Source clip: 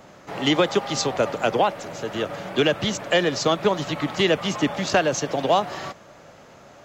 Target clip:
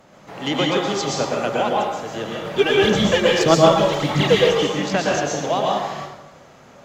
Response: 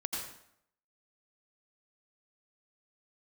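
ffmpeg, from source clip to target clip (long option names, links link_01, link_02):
-filter_complex "[0:a]asplit=3[link_01][link_02][link_03];[link_01]afade=type=out:start_time=2.44:duration=0.02[link_04];[link_02]aphaser=in_gain=1:out_gain=1:delay=2.6:decay=0.77:speed=1.7:type=sinusoidal,afade=type=in:start_time=2.44:duration=0.02,afade=type=out:start_time=4.5:duration=0.02[link_05];[link_03]afade=type=in:start_time=4.5:duration=0.02[link_06];[link_04][link_05][link_06]amix=inputs=3:normalize=0[link_07];[1:a]atrim=start_sample=2205,asetrate=32193,aresample=44100[link_08];[link_07][link_08]afir=irnorm=-1:irlink=0,volume=-4dB"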